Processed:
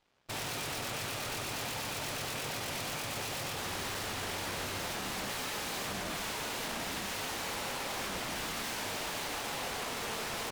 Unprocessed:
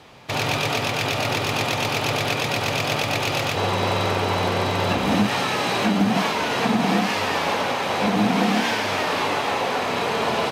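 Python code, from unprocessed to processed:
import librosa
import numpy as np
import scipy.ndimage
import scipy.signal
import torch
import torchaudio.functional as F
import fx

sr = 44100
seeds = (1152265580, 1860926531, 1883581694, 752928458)

y = 10.0 ** (-23.0 / 20.0) * (np.abs((x / 10.0 ** (-23.0 / 20.0) + 3.0) % 4.0 - 2.0) - 1.0)
y = fx.cheby_harmonics(y, sr, harmonics=(3, 6), levels_db=(-10, -24), full_scale_db=-23.0)
y = F.gain(torch.from_numpy(y), -8.5).numpy()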